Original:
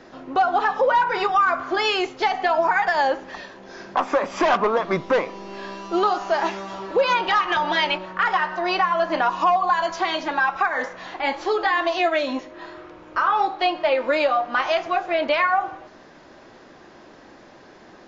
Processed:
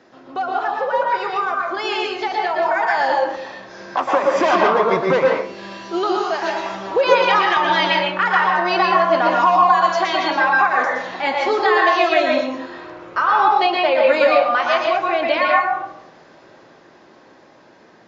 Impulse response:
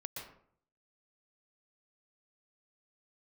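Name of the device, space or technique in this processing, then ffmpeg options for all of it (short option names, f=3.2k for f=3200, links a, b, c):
far laptop microphone: -filter_complex "[1:a]atrim=start_sample=2205[a];[0:a][a]afir=irnorm=-1:irlink=0,highpass=f=130:p=1,dynaudnorm=f=700:g=9:m=11.5dB,asettb=1/sr,asplit=3[b][c][d];[b]atrim=end=5.424[e];[c]atrim=start=5.42:end=6.66,asetpts=PTS-STARTPTS,afade=t=in:d=0.004:c=qsin,afade=t=out:st=1.236:d=0.004:c=qsin,equalizer=f=880:t=o:w=1.8:g=-5.5[f];[d]atrim=start=6.656[g];[e][f]acrossfade=d=0.004:c1=hsin:c2=qsin[h];[h][g]acrossfade=d=0.004:c1=qsin:c2=hsin"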